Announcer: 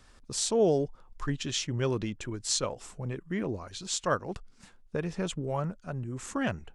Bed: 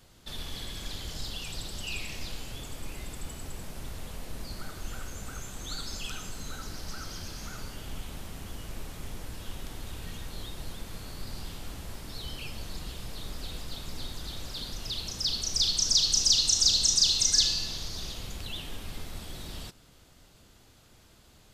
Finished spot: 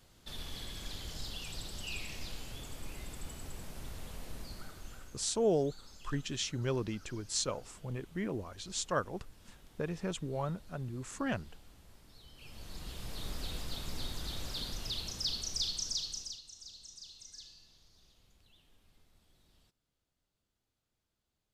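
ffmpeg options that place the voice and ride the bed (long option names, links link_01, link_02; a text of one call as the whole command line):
ffmpeg -i stem1.wav -i stem2.wav -filter_complex "[0:a]adelay=4850,volume=-4.5dB[link_01];[1:a]volume=11.5dB,afade=type=out:start_time=4.3:duration=0.98:silence=0.223872,afade=type=in:start_time=12.34:duration=0.93:silence=0.149624,afade=type=out:start_time=14.54:duration=1.87:silence=0.0473151[link_02];[link_01][link_02]amix=inputs=2:normalize=0" out.wav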